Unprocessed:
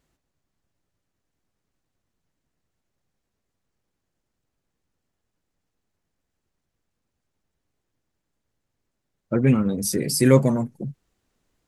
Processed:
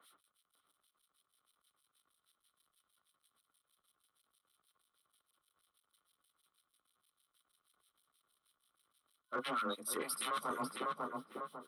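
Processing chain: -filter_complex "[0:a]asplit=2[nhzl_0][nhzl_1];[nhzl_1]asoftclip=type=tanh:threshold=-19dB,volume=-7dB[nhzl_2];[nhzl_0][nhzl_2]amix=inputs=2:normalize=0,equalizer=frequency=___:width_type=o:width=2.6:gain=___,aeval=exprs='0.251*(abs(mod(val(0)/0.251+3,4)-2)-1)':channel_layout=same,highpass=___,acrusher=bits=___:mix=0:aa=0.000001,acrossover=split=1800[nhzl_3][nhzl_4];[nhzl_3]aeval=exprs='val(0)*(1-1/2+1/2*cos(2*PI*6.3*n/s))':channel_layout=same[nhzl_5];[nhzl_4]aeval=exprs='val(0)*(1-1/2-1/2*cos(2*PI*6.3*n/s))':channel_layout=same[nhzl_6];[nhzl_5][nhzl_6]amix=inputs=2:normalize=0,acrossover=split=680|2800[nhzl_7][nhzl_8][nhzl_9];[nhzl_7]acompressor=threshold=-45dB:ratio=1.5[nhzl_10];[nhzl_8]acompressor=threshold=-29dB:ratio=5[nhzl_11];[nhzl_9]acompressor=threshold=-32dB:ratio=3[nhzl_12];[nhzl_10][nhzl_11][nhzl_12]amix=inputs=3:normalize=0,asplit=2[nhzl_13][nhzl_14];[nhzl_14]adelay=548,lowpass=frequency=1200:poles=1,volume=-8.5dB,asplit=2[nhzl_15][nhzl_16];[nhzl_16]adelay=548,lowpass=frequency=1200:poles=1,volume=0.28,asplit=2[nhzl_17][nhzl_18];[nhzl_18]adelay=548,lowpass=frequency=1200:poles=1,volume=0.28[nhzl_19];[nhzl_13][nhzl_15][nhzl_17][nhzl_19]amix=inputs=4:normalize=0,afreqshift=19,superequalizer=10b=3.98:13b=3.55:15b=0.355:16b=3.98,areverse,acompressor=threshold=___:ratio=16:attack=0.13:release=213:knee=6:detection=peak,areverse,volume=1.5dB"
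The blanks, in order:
1700, 5, 370, 11, -32dB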